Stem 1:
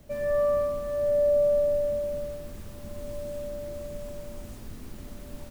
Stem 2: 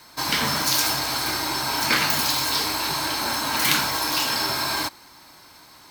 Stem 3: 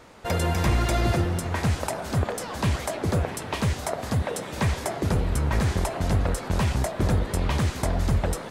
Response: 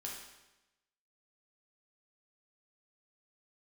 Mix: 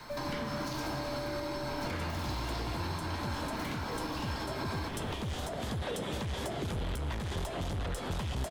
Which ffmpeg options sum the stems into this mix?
-filter_complex "[0:a]volume=-4.5dB[a];[1:a]lowpass=f=1.8k:p=1,asoftclip=type=hard:threshold=-20.5dB,volume=2dB,asplit=2[b][c];[c]volume=-6.5dB[d];[2:a]equalizer=f=3.3k:t=o:w=0.4:g=9.5,asoftclip=type=tanh:threshold=-25.5dB,adelay=1600,volume=2.5dB,asplit=2[e][f];[f]volume=-10dB[g];[3:a]atrim=start_sample=2205[h];[d][g]amix=inputs=2:normalize=0[i];[i][h]afir=irnorm=-1:irlink=0[j];[a][b][e][j]amix=inputs=4:normalize=0,acrossover=split=430|1300[k][l][m];[k]acompressor=threshold=-31dB:ratio=4[n];[l]acompressor=threshold=-39dB:ratio=4[o];[m]acompressor=threshold=-40dB:ratio=4[p];[n][o][p]amix=inputs=3:normalize=0,alimiter=level_in=2.5dB:limit=-24dB:level=0:latency=1:release=276,volume=-2.5dB"

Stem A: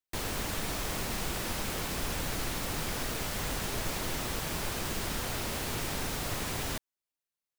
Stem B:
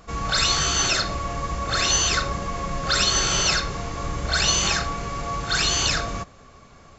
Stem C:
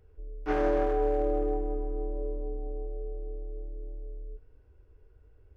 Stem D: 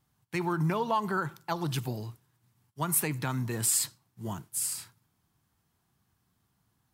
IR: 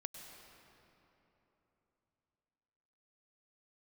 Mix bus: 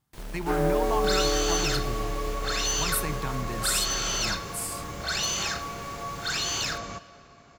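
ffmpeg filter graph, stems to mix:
-filter_complex "[0:a]alimiter=level_in=7.5dB:limit=-24dB:level=0:latency=1:release=256,volume=-7.5dB,volume=-6dB[a];[1:a]highpass=f=130:p=1,asoftclip=type=tanh:threshold=-15.5dB,adelay=750,volume=-7.5dB,asplit=2[b][c];[c]volume=-7dB[d];[2:a]acrusher=bits=6:mix=0:aa=0.000001,volume=1dB[e];[3:a]volume=-2.5dB[f];[4:a]atrim=start_sample=2205[g];[d][g]afir=irnorm=-1:irlink=0[h];[a][b][e][f][h]amix=inputs=5:normalize=0"

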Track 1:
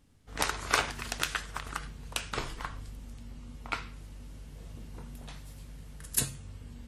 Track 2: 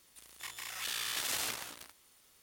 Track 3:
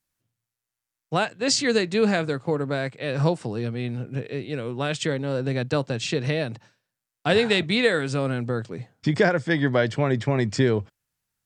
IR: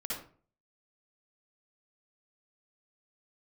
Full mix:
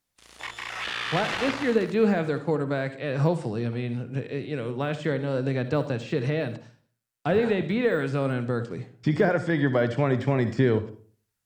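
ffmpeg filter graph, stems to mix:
-filter_complex "[0:a]bandpass=f=690:t=q:w=1.6:csg=0,volume=-13.5dB[a];[1:a]lowpass=6.6k,dynaudnorm=f=170:g=3:m=11dB,agate=range=-21dB:threshold=-56dB:ratio=16:detection=peak,volume=1dB[b];[2:a]deesser=0.95,volume=-2dB,asplit=2[c][d];[d]volume=-12dB[e];[3:a]atrim=start_sample=2205[f];[e][f]afir=irnorm=-1:irlink=0[g];[a][b][c][g]amix=inputs=4:normalize=0,acrossover=split=3000[h][i];[i]acompressor=threshold=-47dB:ratio=4:attack=1:release=60[j];[h][j]amix=inputs=2:normalize=0"

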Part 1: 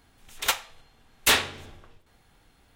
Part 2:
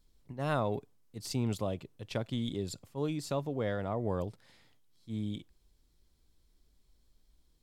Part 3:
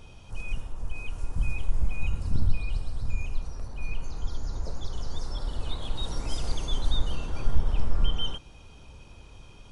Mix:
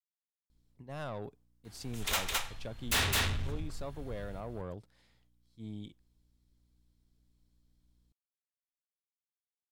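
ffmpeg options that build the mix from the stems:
-filter_complex "[0:a]asubboost=boost=10:cutoff=170,adelay=1650,volume=1dB,asplit=2[a][b];[b]volume=-4dB[c];[1:a]aeval=exprs='(tanh(22.4*val(0)+0.45)-tanh(0.45))/22.4':c=same,aeval=exprs='val(0)+0.000501*(sin(2*PI*60*n/s)+sin(2*PI*2*60*n/s)/2+sin(2*PI*3*60*n/s)/3+sin(2*PI*4*60*n/s)/4+sin(2*PI*5*60*n/s)/5)':c=same,adelay=500,volume=-5.5dB[d];[c]aecho=0:1:212:1[e];[a][d][e]amix=inputs=3:normalize=0,asoftclip=type=tanh:threshold=-26.5dB"

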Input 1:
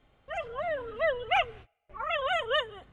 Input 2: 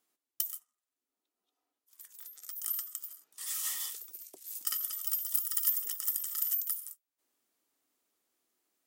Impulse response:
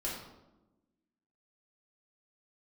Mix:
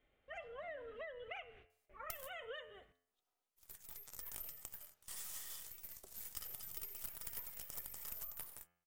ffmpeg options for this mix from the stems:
-filter_complex "[0:a]equalizer=f=125:t=o:w=1:g=-5,equalizer=f=500:t=o:w=1:g=5,equalizer=f=1k:t=o:w=1:g=-5,equalizer=f=2k:t=o:w=1:g=7,acompressor=threshold=-25dB:ratio=6,volume=-13.5dB[a];[1:a]aeval=exprs='if(lt(val(0),0),0.251*val(0),val(0))':c=same,equalizer=f=290:w=3.5:g=-10,adelay=1700,volume=-0.5dB[b];[a][b]amix=inputs=2:normalize=0,bandreject=f=86.98:t=h:w=4,bandreject=f=173.96:t=h:w=4,bandreject=f=260.94:t=h:w=4,bandreject=f=347.92:t=h:w=4,bandreject=f=434.9:t=h:w=4,bandreject=f=521.88:t=h:w=4,bandreject=f=608.86:t=h:w=4,bandreject=f=695.84:t=h:w=4,bandreject=f=782.82:t=h:w=4,bandreject=f=869.8:t=h:w=4,bandreject=f=956.78:t=h:w=4,bandreject=f=1.04376k:t=h:w=4,bandreject=f=1.13074k:t=h:w=4,bandreject=f=1.21772k:t=h:w=4,bandreject=f=1.3047k:t=h:w=4,bandreject=f=1.39168k:t=h:w=4,bandreject=f=1.47866k:t=h:w=4,bandreject=f=1.56564k:t=h:w=4,bandreject=f=1.65262k:t=h:w=4,bandreject=f=1.7396k:t=h:w=4,bandreject=f=1.82658k:t=h:w=4,bandreject=f=1.91356k:t=h:w=4,bandreject=f=2.00054k:t=h:w=4,bandreject=f=2.08752k:t=h:w=4,bandreject=f=2.1745k:t=h:w=4,bandreject=f=2.26148k:t=h:w=4,bandreject=f=2.34846k:t=h:w=4,bandreject=f=2.43544k:t=h:w=4,bandreject=f=2.52242k:t=h:w=4,bandreject=f=2.6094k:t=h:w=4,bandreject=f=2.69638k:t=h:w=4,bandreject=f=2.78336k:t=h:w=4,bandreject=f=2.87034k:t=h:w=4,bandreject=f=2.95732k:t=h:w=4,bandreject=f=3.0443k:t=h:w=4,acompressor=threshold=-45dB:ratio=4"

